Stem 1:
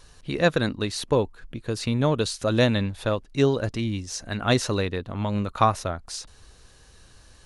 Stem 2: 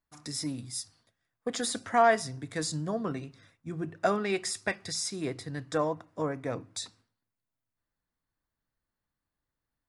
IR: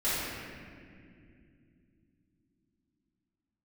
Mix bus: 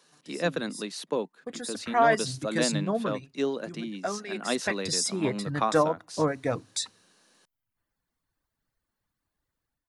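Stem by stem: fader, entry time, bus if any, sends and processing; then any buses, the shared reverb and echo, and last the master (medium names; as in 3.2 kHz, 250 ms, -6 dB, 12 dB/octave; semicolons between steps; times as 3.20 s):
-7.0 dB, 0.00 s, no send, steep high-pass 160 Hz 72 dB/octave
1.60 s -13 dB -> 2.22 s -3 dB -> 3.03 s -3 dB -> 3.49 s -12.5 dB -> 4.49 s -12.5 dB -> 4.84 s -1 dB, 0.00 s, no send, reverb removal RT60 0.98 s; level rider gain up to 7.5 dB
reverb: none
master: none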